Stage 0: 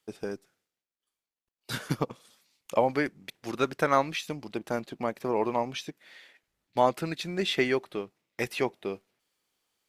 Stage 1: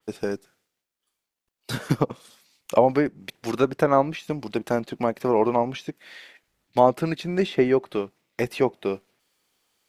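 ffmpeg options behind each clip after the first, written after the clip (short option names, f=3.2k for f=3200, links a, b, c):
-filter_complex "[0:a]acrossover=split=980[a][b];[b]acompressor=threshold=-40dB:ratio=6[c];[a][c]amix=inputs=2:normalize=0,adynamicequalizer=threshold=0.00398:dfrequency=3100:dqfactor=0.7:tfrequency=3100:tqfactor=0.7:attack=5:release=100:ratio=0.375:range=3:mode=cutabove:tftype=highshelf,volume=7.5dB"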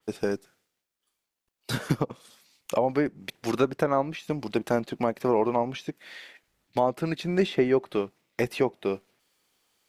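-af "alimiter=limit=-11.5dB:level=0:latency=1:release=452"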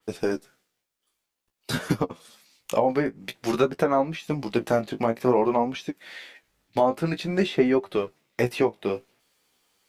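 -af "flanger=delay=10:depth=9.7:regen=25:speed=0.51:shape=triangular,volume=6dB"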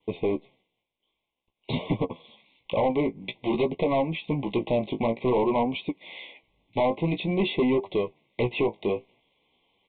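-af "aresample=8000,asoftclip=type=tanh:threshold=-21.5dB,aresample=44100,asuperstop=centerf=1500:order=20:qfactor=1.7,volume=3dB"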